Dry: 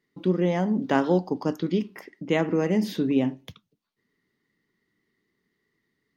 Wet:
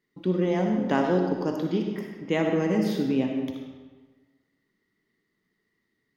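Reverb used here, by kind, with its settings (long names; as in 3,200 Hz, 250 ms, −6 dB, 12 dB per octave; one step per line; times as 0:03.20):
comb and all-pass reverb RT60 1.4 s, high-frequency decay 0.75×, pre-delay 20 ms, DRR 2.5 dB
level −2.5 dB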